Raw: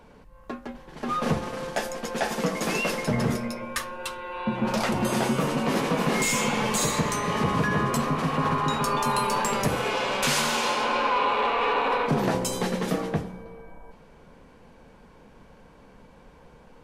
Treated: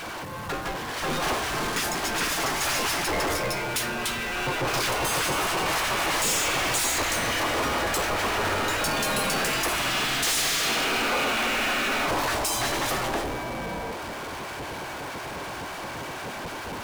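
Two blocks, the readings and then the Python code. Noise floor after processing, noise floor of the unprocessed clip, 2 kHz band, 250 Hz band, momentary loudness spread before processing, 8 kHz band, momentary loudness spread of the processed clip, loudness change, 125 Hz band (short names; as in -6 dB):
-35 dBFS, -52 dBFS, +4.5 dB, -5.5 dB, 9 LU, +4.5 dB, 11 LU, 0.0 dB, -6.0 dB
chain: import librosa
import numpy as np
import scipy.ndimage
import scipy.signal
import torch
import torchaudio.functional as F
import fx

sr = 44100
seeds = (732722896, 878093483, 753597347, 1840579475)

y = fx.spec_gate(x, sr, threshold_db=-10, keep='weak')
y = fx.power_curve(y, sr, exponent=0.35)
y = F.gain(torch.from_numpy(y), -4.5).numpy()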